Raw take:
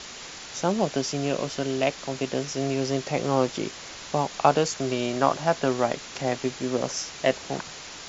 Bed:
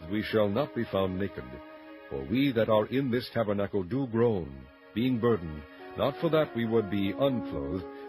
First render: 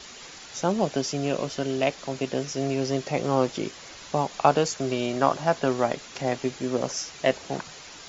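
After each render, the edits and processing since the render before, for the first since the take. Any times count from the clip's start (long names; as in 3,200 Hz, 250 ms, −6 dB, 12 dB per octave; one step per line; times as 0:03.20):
broadband denoise 6 dB, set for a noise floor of −41 dBFS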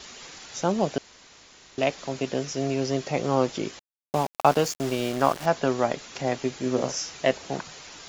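0:00.98–0:01.78: fill with room tone
0:03.79–0:05.46: centre clipping without the shift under −31.5 dBFS
0:06.61–0:07.18: double-tracking delay 39 ms −7 dB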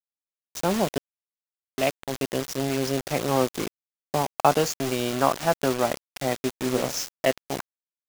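bit reduction 5 bits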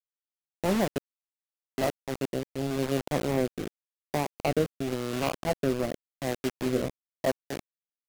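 running median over 41 samples
rotating-speaker cabinet horn 0.9 Hz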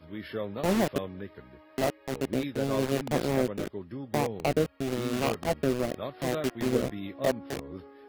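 mix in bed −8.5 dB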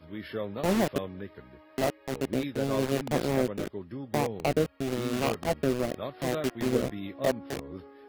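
no processing that can be heard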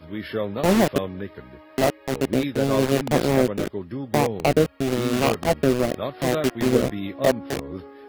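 level +7.5 dB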